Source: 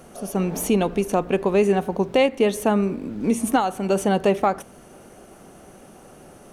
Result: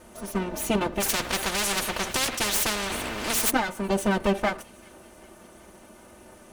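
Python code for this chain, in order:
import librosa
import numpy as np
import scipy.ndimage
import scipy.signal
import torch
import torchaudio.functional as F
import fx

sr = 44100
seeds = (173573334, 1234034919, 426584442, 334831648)

y = fx.lower_of_two(x, sr, delay_ms=3.4)
y = fx.notch_comb(y, sr, f0_hz=280.0)
y = fx.echo_wet_highpass(y, sr, ms=385, feedback_pct=61, hz=2300.0, wet_db=-22.0)
y = fx.spectral_comp(y, sr, ratio=4.0, at=(1.0, 3.5), fade=0.02)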